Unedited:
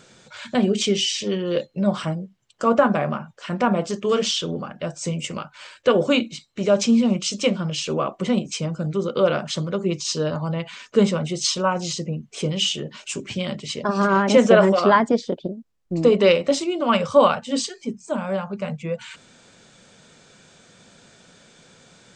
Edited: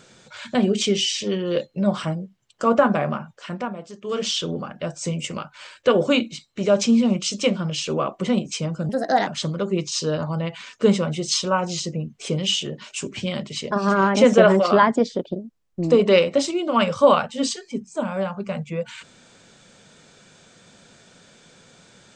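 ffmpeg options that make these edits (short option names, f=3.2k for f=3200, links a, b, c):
-filter_complex "[0:a]asplit=5[a][b][c][d][e];[a]atrim=end=3.73,asetpts=PTS-STARTPTS,afade=t=out:st=3.34:d=0.39:silence=0.223872[f];[b]atrim=start=3.73:end=3.99,asetpts=PTS-STARTPTS,volume=-13dB[g];[c]atrim=start=3.99:end=8.894,asetpts=PTS-STARTPTS,afade=t=in:d=0.39:silence=0.223872[h];[d]atrim=start=8.89:end=9.4,asetpts=PTS-STARTPTS,asetrate=59094,aresample=44100,atrim=end_sample=16784,asetpts=PTS-STARTPTS[i];[e]atrim=start=9.396[j];[f][g][h]concat=n=3:v=0:a=1[k];[k][i]acrossfade=d=0.004:c1=hsin:c2=hsin[l];[l][j]acrossfade=d=0.004:c1=hsin:c2=hsin"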